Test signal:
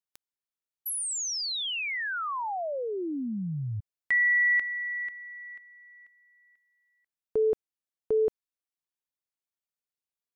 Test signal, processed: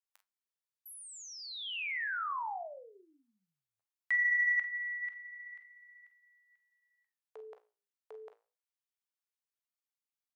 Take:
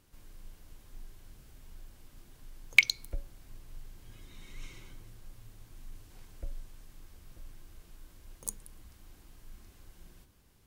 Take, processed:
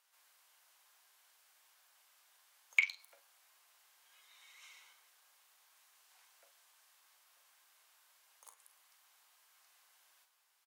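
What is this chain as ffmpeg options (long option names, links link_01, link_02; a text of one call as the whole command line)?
ffmpeg -i in.wav -filter_complex "[0:a]acrossover=split=2900[link_01][link_02];[link_02]acompressor=threshold=-47dB:ratio=4:attack=1:release=60[link_03];[link_01][link_03]amix=inputs=2:normalize=0,highpass=frequency=780:width=0.5412,highpass=frequency=780:width=1.3066,flanger=delay=10:depth=8.9:regen=-73:speed=0.31:shape=sinusoidal,asoftclip=type=tanh:threshold=-12.5dB,aecho=1:1:37|47:0.188|0.266" out.wav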